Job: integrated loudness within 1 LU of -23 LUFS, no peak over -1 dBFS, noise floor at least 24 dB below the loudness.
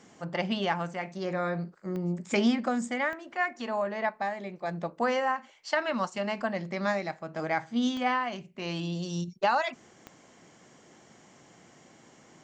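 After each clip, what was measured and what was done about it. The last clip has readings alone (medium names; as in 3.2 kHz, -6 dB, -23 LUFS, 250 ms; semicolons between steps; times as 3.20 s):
clicks found 4; loudness -31.0 LUFS; peak level -13.5 dBFS; loudness target -23.0 LUFS
-> de-click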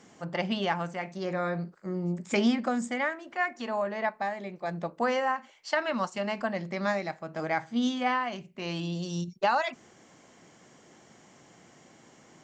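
clicks found 0; loudness -31.0 LUFS; peak level -13.5 dBFS; loudness target -23.0 LUFS
-> trim +8 dB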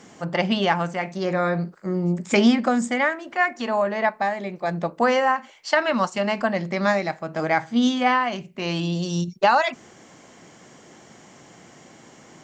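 loudness -23.0 LUFS; peak level -5.5 dBFS; noise floor -50 dBFS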